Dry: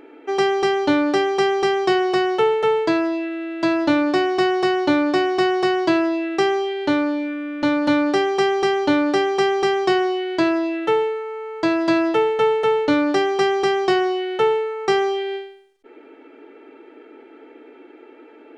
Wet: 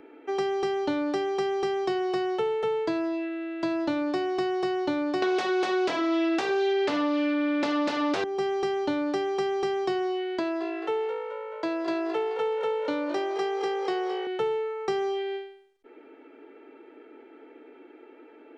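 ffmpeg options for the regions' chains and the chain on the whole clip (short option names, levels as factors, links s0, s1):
-filter_complex "[0:a]asettb=1/sr,asplit=3[s0][s1][s2];[s0]atrim=end=5.224[s3];[s1]atrim=start=5.22:end=8.24,asetpts=PTS-STARTPTS,afade=t=in:d=0.004:c=qsin,afade=t=out:st=3.016:d=0.004:c=qsin,bandreject=f=50:t=h:w=6,bandreject=f=100:t=h:w=6,bandreject=f=150:t=h:w=6,bandreject=f=200:t=h:w=6,bandreject=f=250:t=h:w=6,bandreject=f=300:t=h:w=6,bandreject=f=350:t=h:w=6,bandreject=f=400:t=h:w=6,aeval=exprs='0.501*sin(PI/2*5.62*val(0)/0.501)':c=same,highpass=250,lowpass=5200[s4];[s2]atrim=start=8.236[s5];[s3][s4]acrossfade=d=0.004:c1=hsin:c2=qsin[s6];[s6][s5]acrossfade=d=0.004:c1=qsin:c2=hsin,asettb=1/sr,asplit=3[s7][s8][s9];[s7]atrim=end=10.394[s10];[s8]atrim=start=10.39:end=14.27,asetpts=PTS-STARTPTS,afade=t=in:d=0.004:c=qsin,afade=t=out:st=3.876:d=0.004:c=qsin,bass=f=250:g=-15,treble=f=4000:g=-3,asplit=5[s11][s12][s13][s14][s15];[s12]adelay=214,afreqshift=54,volume=0.266[s16];[s13]adelay=428,afreqshift=108,volume=0.112[s17];[s14]adelay=642,afreqshift=162,volume=0.0468[s18];[s15]adelay=856,afreqshift=216,volume=0.0197[s19];[s11][s16][s17][s18][s19]amix=inputs=5:normalize=0,atrim=end_sample=171108[s20];[s9]atrim=start=14.266[s21];[s10][s20]acrossfade=d=0.004:c1=hsin:c2=qsin[s22];[s22][s21]acrossfade=d=0.004:c1=qsin:c2=hsin,highshelf=f=5200:g=-6,acrossover=split=470|940|3300[s23][s24][s25][s26];[s23]acompressor=threshold=0.0708:ratio=4[s27];[s24]acompressor=threshold=0.0398:ratio=4[s28];[s25]acompressor=threshold=0.0158:ratio=4[s29];[s26]acompressor=threshold=0.0141:ratio=4[s30];[s27][s28][s29][s30]amix=inputs=4:normalize=0,volume=0.531"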